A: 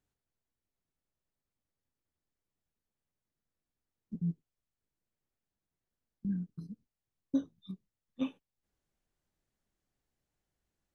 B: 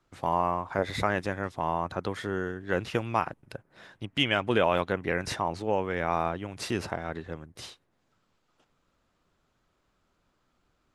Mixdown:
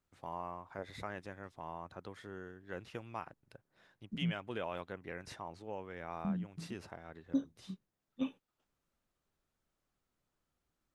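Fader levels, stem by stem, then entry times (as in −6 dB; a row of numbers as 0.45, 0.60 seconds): −2.0, −16.0 decibels; 0.00, 0.00 seconds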